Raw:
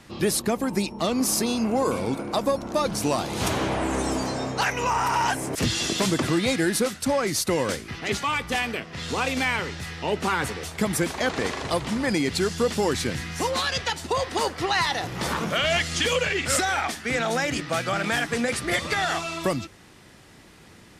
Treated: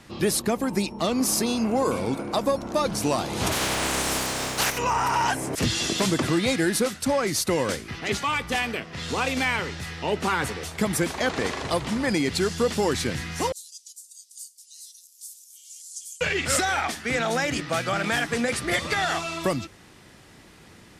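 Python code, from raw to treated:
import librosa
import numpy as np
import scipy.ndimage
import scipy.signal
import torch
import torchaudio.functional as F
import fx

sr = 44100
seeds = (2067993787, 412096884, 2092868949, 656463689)

y = fx.spec_flatten(x, sr, power=0.37, at=(3.51, 4.77), fade=0.02)
y = fx.cheby2_highpass(y, sr, hz=1300.0, order=4, stop_db=80, at=(13.52, 16.21))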